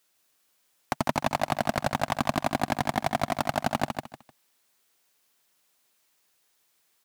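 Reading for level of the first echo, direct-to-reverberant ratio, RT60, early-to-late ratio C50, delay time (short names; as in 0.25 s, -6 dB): -5.5 dB, none, none, none, 0.152 s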